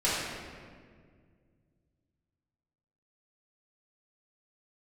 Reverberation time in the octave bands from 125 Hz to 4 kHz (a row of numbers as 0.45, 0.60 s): 3.3, 2.7, 2.2, 1.6, 1.6, 1.2 s